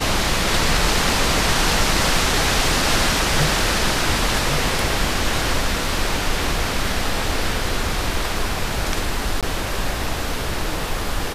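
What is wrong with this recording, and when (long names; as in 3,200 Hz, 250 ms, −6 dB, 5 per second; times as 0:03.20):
0:09.41–0:09.43: drop-out 17 ms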